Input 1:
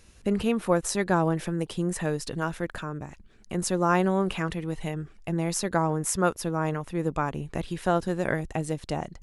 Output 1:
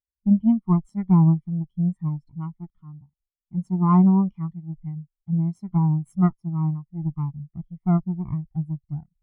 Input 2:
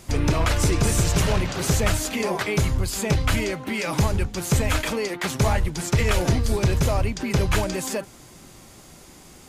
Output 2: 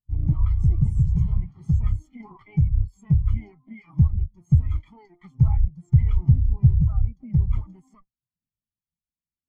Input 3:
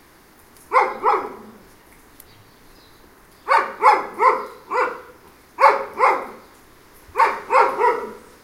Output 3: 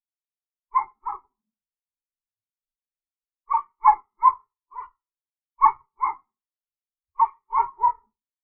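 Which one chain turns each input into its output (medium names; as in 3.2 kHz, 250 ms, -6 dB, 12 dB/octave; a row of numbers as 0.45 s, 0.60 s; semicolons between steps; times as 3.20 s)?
comb filter that takes the minimum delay 0.94 ms; dynamic bell 140 Hz, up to +3 dB, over -36 dBFS, Q 4.6; spectral contrast expander 2.5:1; normalise loudness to -23 LUFS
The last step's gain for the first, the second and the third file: +2.5 dB, +3.5 dB, -1.5 dB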